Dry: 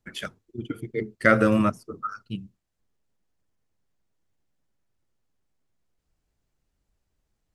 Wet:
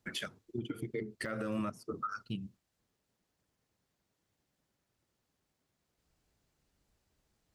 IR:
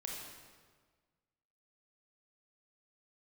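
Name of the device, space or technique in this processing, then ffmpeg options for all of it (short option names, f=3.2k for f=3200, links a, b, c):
broadcast voice chain: -af "highpass=f=86:p=1,deesser=0.75,acompressor=threshold=-34dB:ratio=3,equalizer=f=4.3k:t=o:w=0.77:g=2,alimiter=level_in=6dB:limit=-24dB:level=0:latency=1:release=107,volume=-6dB,volume=3dB"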